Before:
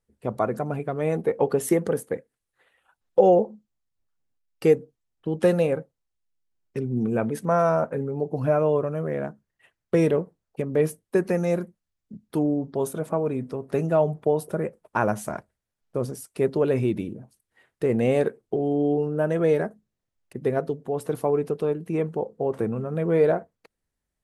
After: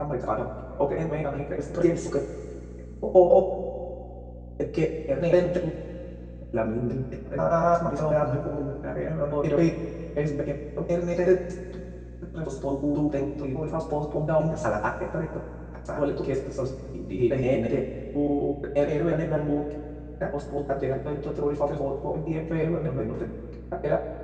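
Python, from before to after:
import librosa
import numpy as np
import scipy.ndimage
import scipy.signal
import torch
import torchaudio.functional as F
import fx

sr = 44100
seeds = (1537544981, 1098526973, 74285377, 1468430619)

y = fx.block_reorder(x, sr, ms=121.0, group=6)
y = scipy.signal.sosfilt(scipy.signal.butter(12, 7600.0, 'lowpass', fs=sr, output='sos'), y)
y = fx.rev_double_slope(y, sr, seeds[0], early_s=0.22, late_s=2.6, knee_db=-18, drr_db=-5.5)
y = fx.add_hum(y, sr, base_hz=60, snr_db=14)
y = y * librosa.db_to_amplitude(-7.5)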